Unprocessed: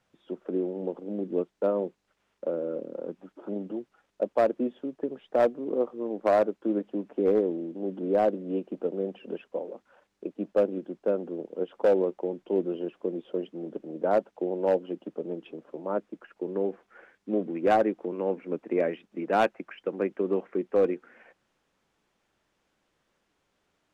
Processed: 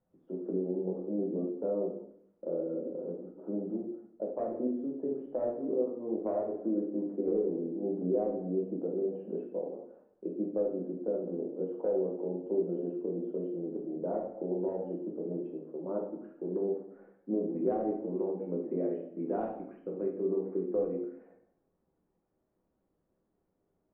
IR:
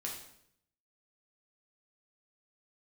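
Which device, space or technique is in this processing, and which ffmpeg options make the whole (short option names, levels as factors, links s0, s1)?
television next door: -filter_complex "[0:a]asettb=1/sr,asplit=3[s0][s1][s2];[s0]atrim=end=19.444[s3];[s1]atrim=start=19.44:end=20.24,asetpts=PTS-STARTPTS,afade=t=in:d=0.004:c=qsin,afade=t=out:st=0.796:d=0.004:c=qsin,equalizer=f=700:w=0.38:g=-4.5[s4];[s2]atrim=start=20.236[s5];[s3][s4]acrossfade=d=0.004:c1=hsin:c2=qsin[s6];[s6][s5]acrossfade=d=0.004:c1=qsin:c2=hsin,acompressor=threshold=0.0501:ratio=5,lowpass=580[s7];[1:a]atrim=start_sample=2205[s8];[s7][s8]afir=irnorm=-1:irlink=0"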